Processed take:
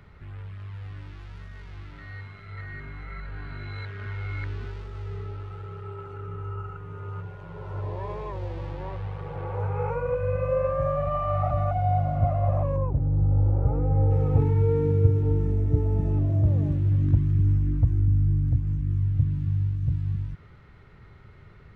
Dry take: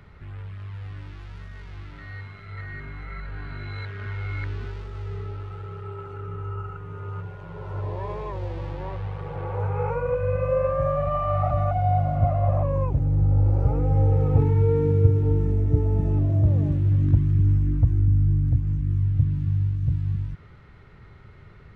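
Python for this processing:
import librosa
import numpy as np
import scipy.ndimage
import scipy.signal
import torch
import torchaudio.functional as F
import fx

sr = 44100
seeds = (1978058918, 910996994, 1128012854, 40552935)

y = fx.lowpass(x, sr, hz=fx.line((12.76, 1300.0), (14.09, 1800.0)), slope=12, at=(12.76, 14.09), fade=0.02)
y = F.gain(torch.from_numpy(y), -2.0).numpy()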